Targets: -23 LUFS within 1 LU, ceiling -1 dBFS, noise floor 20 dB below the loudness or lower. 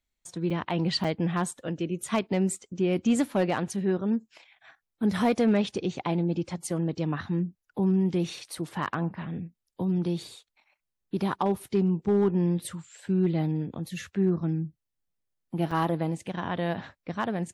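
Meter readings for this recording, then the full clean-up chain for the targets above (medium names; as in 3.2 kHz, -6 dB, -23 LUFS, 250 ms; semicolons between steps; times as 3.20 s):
clipped samples 0.3%; clipping level -16.5 dBFS; dropouts 3; longest dropout 5.1 ms; loudness -28.5 LUFS; peak level -16.5 dBFS; loudness target -23.0 LUFS
-> clip repair -16.5 dBFS; interpolate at 0.50/1.04/15.71 s, 5.1 ms; trim +5.5 dB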